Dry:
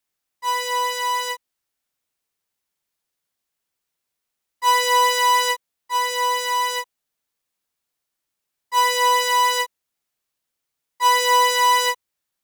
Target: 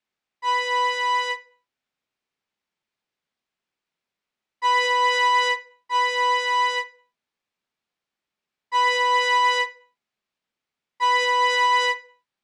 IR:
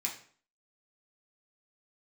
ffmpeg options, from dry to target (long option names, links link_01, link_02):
-filter_complex "[0:a]lowpass=3700,asplit=2[link_01][link_02];[1:a]atrim=start_sample=2205,afade=type=out:start_time=0.36:duration=0.01,atrim=end_sample=16317,lowshelf=frequency=340:gain=10[link_03];[link_02][link_03]afir=irnorm=-1:irlink=0,volume=-13.5dB[link_04];[link_01][link_04]amix=inputs=2:normalize=0,alimiter=limit=-12.5dB:level=0:latency=1:release=34"